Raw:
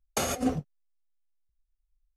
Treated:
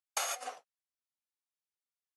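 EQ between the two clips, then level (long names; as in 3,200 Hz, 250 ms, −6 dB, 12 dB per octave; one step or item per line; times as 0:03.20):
high-pass filter 730 Hz 24 dB per octave
linear-phase brick-wall low-pass 12,000 Hz
−3.0 dB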